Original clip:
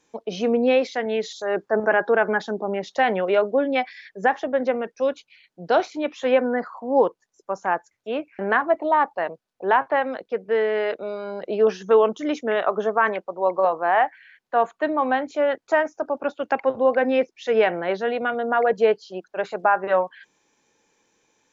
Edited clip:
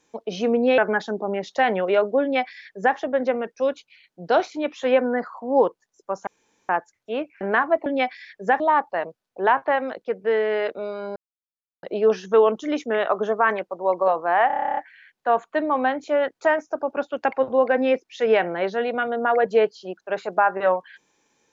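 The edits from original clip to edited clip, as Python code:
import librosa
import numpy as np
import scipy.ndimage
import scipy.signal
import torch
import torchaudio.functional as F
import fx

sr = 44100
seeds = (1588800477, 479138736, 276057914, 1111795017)

y = fx.edit(x, sr, fx.cut(start_s=0.78, length_s=1.4),
    fx.duplicate(start_s=3.62, length_s=0.74, to_s=8.84),
    fx.insert_room_tone(at_s=7.67, length_s=0.42),
    fx.insert_silence(at_s=11.4, length_s=0.67),
    fx.stutter(start_s=14.04, slice_s=0.03, count=11), tone=tone)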